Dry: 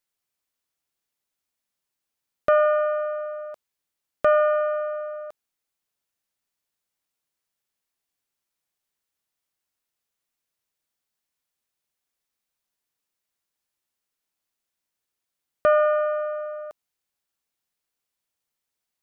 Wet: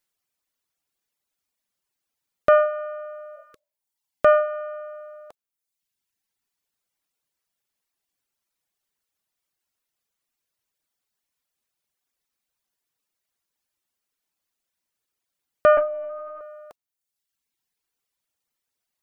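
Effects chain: 3.39–3.82 spectral repair 520–1100 Hz both; reverb removal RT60 1.1 s; 15.77–16.41 LPC vocoder at 8 kHz pitch kept; gain +3.5 dB

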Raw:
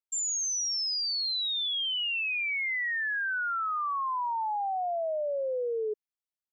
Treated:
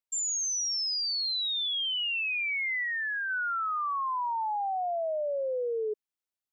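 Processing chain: 2.83–3.3 dynamic EQ 1100 Hz, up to -4 dB, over -46 dBFS, Q 1.5

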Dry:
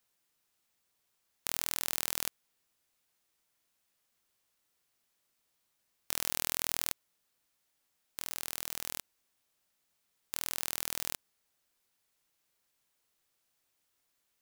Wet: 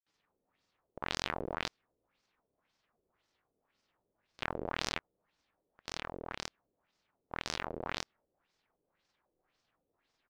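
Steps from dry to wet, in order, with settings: high shelf 2400 Hz -11.5 dB; tempo 1.4×; grains; LFO low-pass sine 1.9 Hz 430–5600 Hz; gain +8 dB

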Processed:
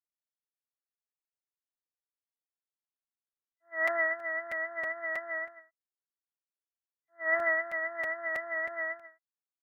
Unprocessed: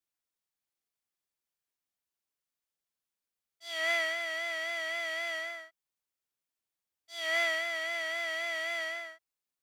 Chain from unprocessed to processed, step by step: FFT band-pass 230–2000 Hz; in parallel at +3 dB: limiter -31.5 dBFS, peak gain reduction 10 dB; on the sum: crackling interface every 0.32 s, samples 256, repeat, from 0.35; upward expander 2.5:1, over -40 dBFS; gain +2 dB

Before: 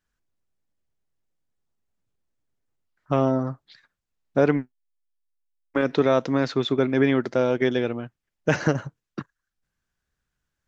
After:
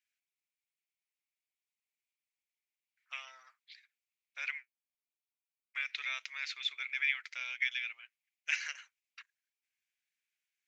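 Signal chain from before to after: ladder high-pass 2100 Hz, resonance 70%; high shelf 3900 Hz +5 dB; gain +1.5 dB

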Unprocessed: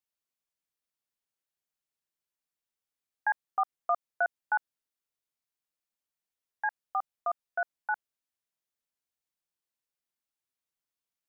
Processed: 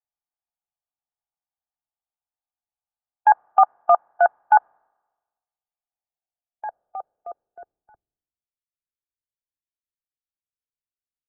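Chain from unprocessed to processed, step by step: per-bin compression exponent 0.6; low-pass sweep 930 Hz -> 340 Hz, 5.72–8.09; three-band expander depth 100%

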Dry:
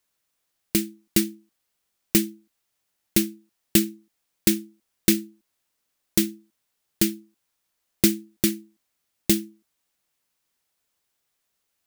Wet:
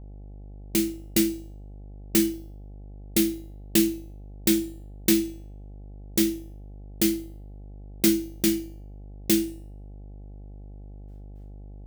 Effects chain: in parallel at -11.5 dB: wavefolder -16.5 dBFS; on the sum: AGC gain up to 10.5 dB; gate with hold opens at -52 dBFS; on a send at -4.5 dB: reverb RT60 0.35 s, pre-delay 10 ms; on the sum: buzz 50 Hz, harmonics 17, -36 dBFS -8 dB/oct; resonator 260 Hz, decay 0.74 s, mix 50%; mismatched tape noise reduction decoder only

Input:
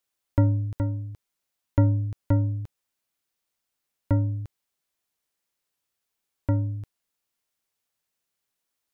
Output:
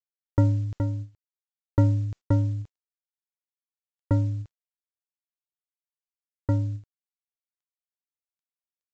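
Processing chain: gate with hold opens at -22 dBFS; µ-law 128 kbps 16000 Hz

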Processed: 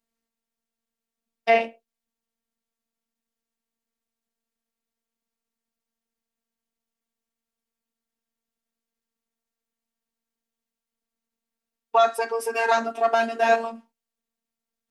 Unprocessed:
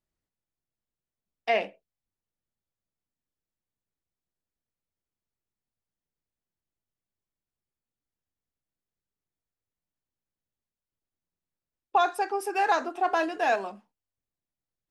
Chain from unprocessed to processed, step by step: resonant low shelf 150 Hz -7.5 dB, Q 1.5; robotiser 228 Hz; gain +7 dB

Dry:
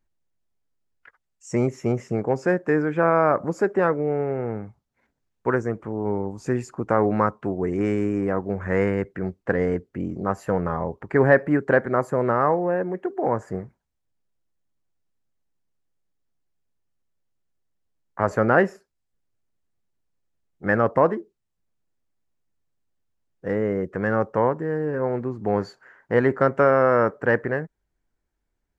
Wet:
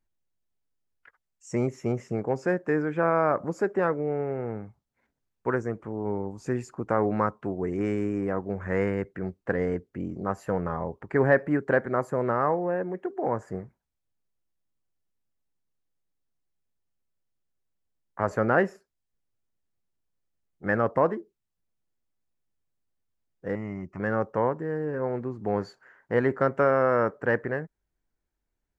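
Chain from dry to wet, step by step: 23.55–24 fixed phaser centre 2400 Hz, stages 8; gain -4.5 dB

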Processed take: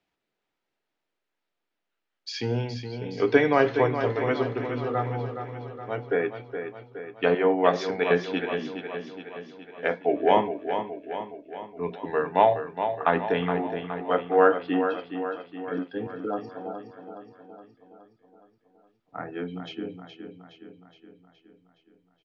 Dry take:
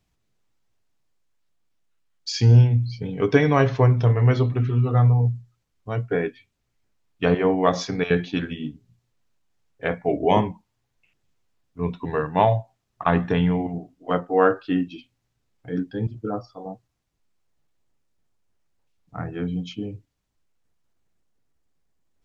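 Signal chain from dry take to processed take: three-band isolator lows -21 dB, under 250 Hz, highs -17 dB, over 4200 Hz; notch 1100 Hz, Q 13; feedback echo 0.418 s, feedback 57%, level -8.5 dB

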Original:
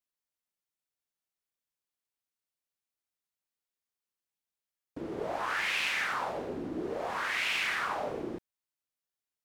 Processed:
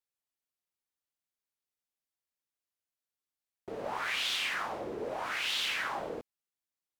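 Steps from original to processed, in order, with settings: speed mistake 33 rpm record played at 45 rpm; gain -1.5 dB

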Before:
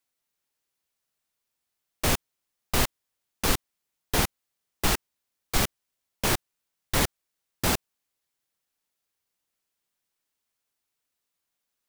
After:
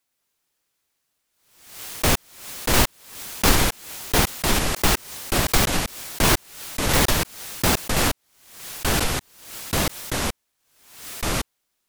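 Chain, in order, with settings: echoes that change speed 0.109 s, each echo -4 st, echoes 2; backwards sustainer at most 77 dB/s; gain +5 dB

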